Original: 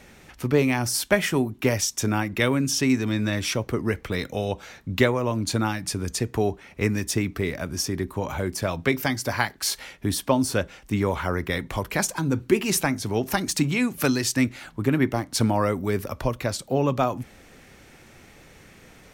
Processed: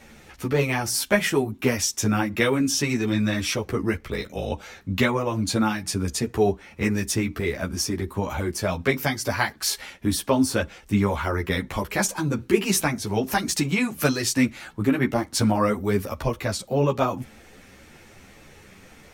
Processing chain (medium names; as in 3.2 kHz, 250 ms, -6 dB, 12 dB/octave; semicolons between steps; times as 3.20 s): 3.96–4.52 s: ring modulator 27 Hz; three-phase chorus; trim +4 dB